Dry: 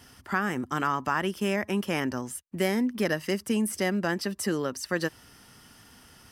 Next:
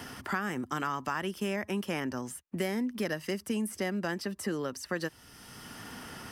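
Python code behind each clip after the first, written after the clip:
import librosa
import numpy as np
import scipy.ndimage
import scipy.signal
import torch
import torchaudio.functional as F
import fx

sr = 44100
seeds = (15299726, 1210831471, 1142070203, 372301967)

y = fx.band_squash(x, sr, depth_pct=70)
y = y * 10.0 ** (-5.5 / 20.0)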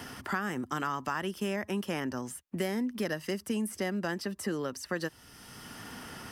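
y = fx.dynamic_eq(x, sr, hz=2300.0, q=7.0, threshold_db=-54.0, ratio=4.0, max_db=-4)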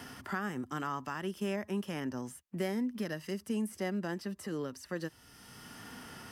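y = fx.hpss(x, sr, part='harmonic', gain_db=7)
y = y * 10.0 ** (-8.5 / 20.0)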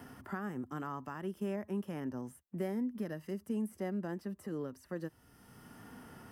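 y = fx.peak_eq(x, sr, hz=4500.0, db=-12.5, octaves=2.7)
y = y * 10.0 ** (-1.5 / 20.0)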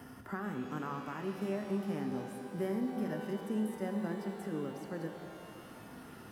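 y = fx.rev_shimmer(x, sr, seeds[0], rt60_s=3.3, semitones=12, shimmer_db=-8, drr_db=4.5)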